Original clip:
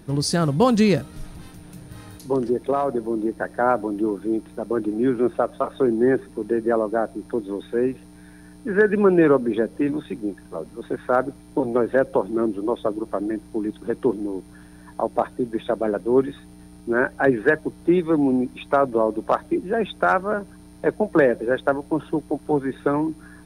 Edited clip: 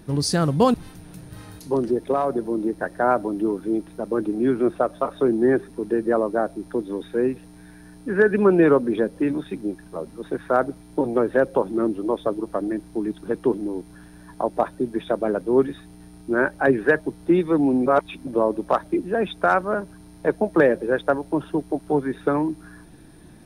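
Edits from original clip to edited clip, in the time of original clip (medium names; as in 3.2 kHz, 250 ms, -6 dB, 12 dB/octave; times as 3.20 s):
0.74–1.33 s: delete
18.45–18.86 s: reverse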